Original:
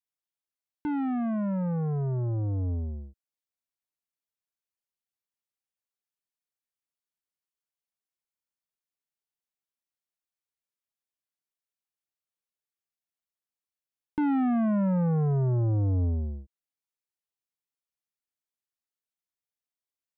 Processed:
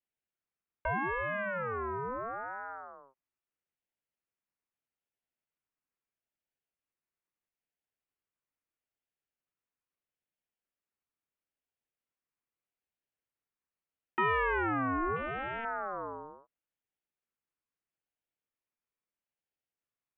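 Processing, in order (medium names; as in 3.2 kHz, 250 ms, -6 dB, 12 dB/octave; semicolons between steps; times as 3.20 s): 15.16–15.65 s: hard clipper -31.5 dBFS, distortion -12 dB; mistuned SSB -140 Hz 370–2200 Hz; ring modulator with a swept carrier 910 Hz, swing 25%, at 0.77 Hz; trim +7 dB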